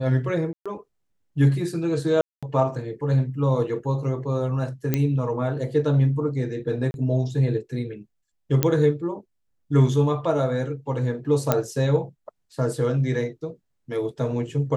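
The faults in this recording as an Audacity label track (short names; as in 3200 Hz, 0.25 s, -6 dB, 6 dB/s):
0.530000	0.660000	gap 0.126 s
2.210000	2.430000	gap 0.216 s
4.940000	4.940000	pop -8 dBFS
6.910000	6.940000	gap 31 ms
8.630000	8.630000	pop -5 dBFS
11.520000	11.520000	pop -5 dBFS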